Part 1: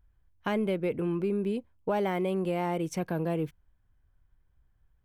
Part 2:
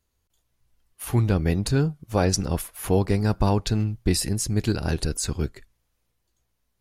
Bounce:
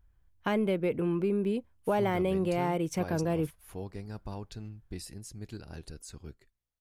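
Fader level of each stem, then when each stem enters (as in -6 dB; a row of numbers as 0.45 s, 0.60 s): +0.5 dB, -19.0 dB; 0.00 s, 0.85 s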